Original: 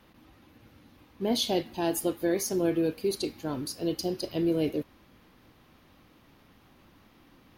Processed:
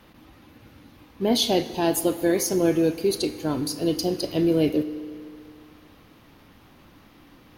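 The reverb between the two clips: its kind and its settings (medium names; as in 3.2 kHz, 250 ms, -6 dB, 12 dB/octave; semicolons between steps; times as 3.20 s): FDN reverb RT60 2.4 s, low-frequency decay 0.95×, high-frequency decay 0.9×, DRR 13 dB; trim +6 dB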